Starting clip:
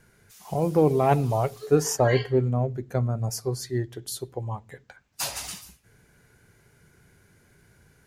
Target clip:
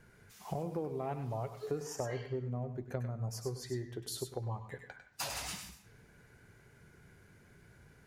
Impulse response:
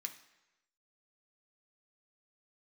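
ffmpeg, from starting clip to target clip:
-filter_complex "[0:a]equalizer=f=11k:w=0.34:g=-7.5,acompressor=threshold=-33dB:ratio=10,asplit=2[a][b];[1:a]atrim=start_sample=2205,adelay=99[c];[b][c]afir=irnorm=-1:irlink=0,volume=-4dB[d];[a][d]amix=inputs=2:normalize=0,volume=-1.5dB"

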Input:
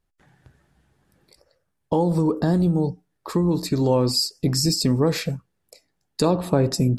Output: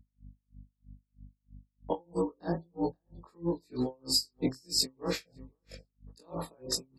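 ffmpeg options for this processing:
-filter_complex "[0:a]afftfilt=real='re':imag='-im':win_size=2048:overlap=0.75,acompressor=threshold=-24dB:ratio=8,afftfilt=real='re*gte(hypot(re,im),0.00562)':imag='im*gte(hypot(re,im),0.00562)':win_size=1024:overlap=0.75,acontrast=55,highpass=300,asplit=2[a][b];[b]adelay=527,lowpass=f=4.3k:p=1,volume=-22dB,asplit=2[c][d];[d]adelay=527,lowpass=f=4.3k:p=1,volume=0.24[e];[c][e]amix=inputs=2:normalize=0[f];[a][f]amix=inputs=2:normalize=0,agate=range=-53dB:threshold=-57dB:ratio=16:detection=peak,aeval=exprs='val(0)+0.00501*(sin(2*PI*50*n/s)+sin(2*PI*2*50*n/s)/2+sin(2*PI*3*50*n/s)/3+sin(2*PI*4*50*n/s)/4+sin(2*PI*5*50*n/s)/5)':c=same,aeval=exprs='val(0)*pow(10,-38*(0.5-0.5*cos(2*PI*3.1*n/s))/20)':c=same"

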